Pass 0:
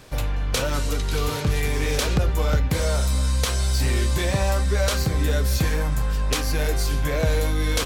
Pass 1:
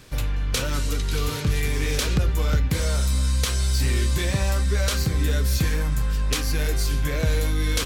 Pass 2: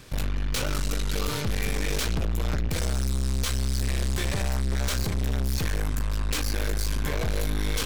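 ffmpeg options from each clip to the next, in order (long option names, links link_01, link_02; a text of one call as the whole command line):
ffmpeg -i in.wav -af "equalizer=frequency=710:width=1.1:gain=-7.5" out.wav
ffmpeg -i in.wav -af "aeval=exprs='(tanh(31.6*val(0)+0.8)-tanh(0.8))/31.6':channel_layout=same,volume=5dB" out.wav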